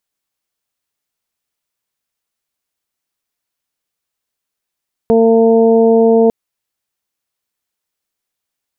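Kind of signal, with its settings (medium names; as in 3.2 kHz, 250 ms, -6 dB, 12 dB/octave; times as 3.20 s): steady additive tone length 1.20 s, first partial 227 Hz, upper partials 4/-5/-14 dB, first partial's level -12 dB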